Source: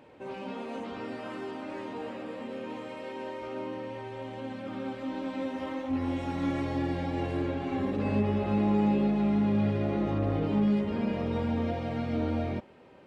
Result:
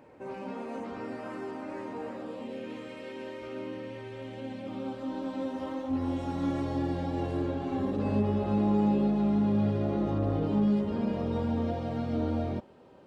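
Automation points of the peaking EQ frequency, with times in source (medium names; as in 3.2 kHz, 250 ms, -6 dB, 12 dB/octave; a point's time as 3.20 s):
peaking EQ -9 dB 0.82 oct
2.09 s 3.3 kHz
2.72 s 850 Hz
4.24 s 850 Hz
5.01 s 2.2 kHz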